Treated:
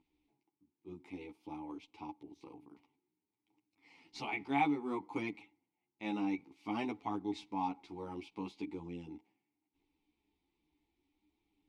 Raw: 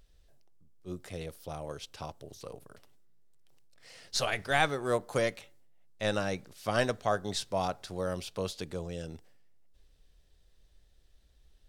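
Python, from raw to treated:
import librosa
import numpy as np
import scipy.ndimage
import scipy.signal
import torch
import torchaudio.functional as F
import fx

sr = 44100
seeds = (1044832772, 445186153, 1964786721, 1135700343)

y = fx.vowel_filter(x, sr, vowel='u')
y = fx.chorus_voices(y, sr, voices=2, hz=0.56, base_ms=12, depth_ms=2.6, mix_pct=45)
y = fx.end_taper(y, sr, db_per_s=500.0)
y = y * 10.0 ** (11.5 / 20.0)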